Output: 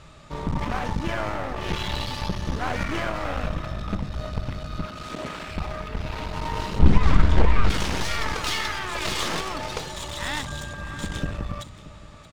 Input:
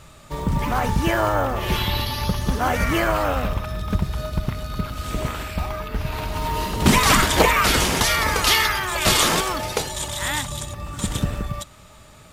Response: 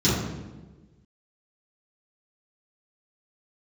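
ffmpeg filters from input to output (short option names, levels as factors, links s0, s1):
-filter_complex "[0:a]lowpass=5700,alimiter=limit=0.251:level=0:latency=1:release=327,aeval=exprs='clip(val(0),-1,0.0211)':c=same,asettb=1/sr,asplit=3[s0][s1][s2];[s0]atrim=end=4.854[s3];[s1]atrim=start=4.85:end=5.48,asetpts=PTS-STARTPTS,afade=t=in:d=0.004:c=qsin,afade=t=out:st=0.626:d=0.004:c=qsin,highpass=210[s4];[s2]atrim=start=5.476[s5];[s3][s4]acrossfade=d=0.004:c1=hsin:c2=qsin[s6];[s6][s5]acrossfade=d=0.004:c1=qsin:c2=hsin,asettb=1/sr,asplit=3[s7][s8][s9];[s7]atrim=end=6.794[s10];[s8]atrim=start=6.79:end=7.7,asetpts=PTS-STARTPTS,afade=t=in:d=0.004:c=qsin,afade=t=out:st=0.906:d=0.004:c=qsin,aemphasis=mode=reproduction:type=riaa[s11];[s9]atrim=start=7.696[s12];[s10][s11]acrossfade=d=0.004:c1=hsin:c2=qsin[s13];[s13][s12]acrossfade=d=0.004:c1=qsin:c2=hsin,aecho=1:1:627:0.15,asettb=1/sr,asplit=3[s14][s15][s16];[s14]atrim=end=10.474[s17];[s15]atrim=start=10.47:end=11.31,asetpts=PTS-STARTPTS,afade=t=in:d=0.004:c=qsin,afade=t=out:st=0.836:d=0.004:c=qsin,aeval=exprs='val(0)+0.0126*sin(2*PI*1600*n/s)':c=same[s18];[s16]atrim=start=11.306[s19];[s17][s18]acrossfade=d=0.004:c1=hsin:c2=qsin[s20];[s20][s19]acrossfade=d=0.004:c1=qsin:c2=hsin,asplit=2[s21][s22];[1:a]atrim=start_sample=2205[s23];[s22][s23]afir=irnorm=-1:irlink=0,volume=0.0133[s24];[s21][s24]amix=inputs=2:normalize=0,volume=0.841"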